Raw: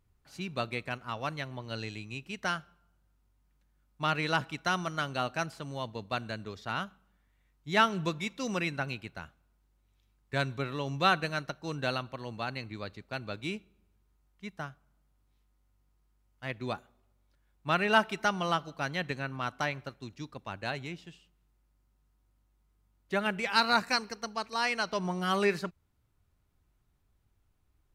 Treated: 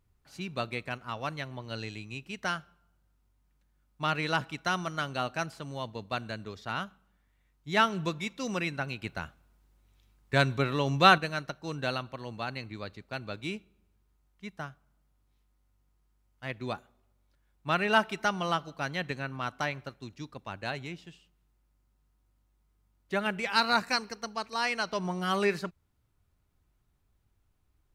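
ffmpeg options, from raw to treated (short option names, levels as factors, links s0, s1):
-filter_complex "[0:a]asplit=3[s0][s1][s2];[s0]atrim=end=9.022[s3];[s1]atrim=start=9.018:end=11.182,asetpts=PTS-STARTPTS,volume=2[s4];[s2]atrim=start=11.178[s5];[s3][s4]acrossfade=d=0.004:c1=hsin:c2=hsin[s6];[s6][s5]acrossfade=d=0.004:c1=hsin:c2=hsin"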